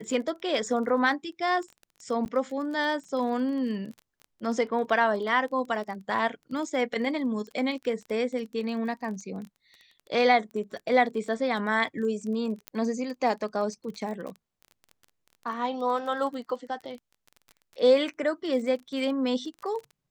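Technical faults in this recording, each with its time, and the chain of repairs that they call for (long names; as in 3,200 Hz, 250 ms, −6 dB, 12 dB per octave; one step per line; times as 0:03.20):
surface crackle 23 per second −36 dBFS
0:02.25–0:02.26: drop-out 9.7 ms
0:12.68: click −17 dBFS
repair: click removal
repair the gap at 0:02.25, 9.7 ms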